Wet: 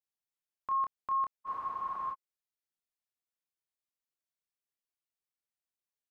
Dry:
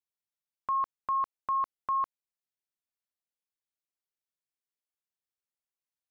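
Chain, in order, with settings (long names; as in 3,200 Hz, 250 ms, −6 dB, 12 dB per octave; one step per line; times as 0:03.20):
double-tracking delay 27 ms −4 dB
frozen spectrum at 0:01.49, 0.64 s
level −5 dB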